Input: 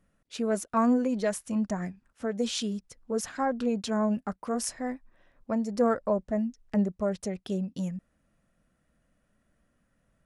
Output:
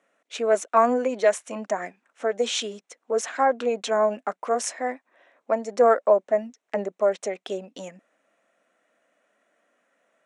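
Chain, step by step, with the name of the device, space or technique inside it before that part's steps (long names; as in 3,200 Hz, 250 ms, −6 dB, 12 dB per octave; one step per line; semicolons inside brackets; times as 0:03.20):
phone speaker on a table (loudspeaker in its box 340–8,100 Hz, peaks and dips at 350 Hz −3 dB, 680 Hz +4 dB, 2,200 Hz +4 dB, 4,800 Hz −9 dB)
level +7.5 dB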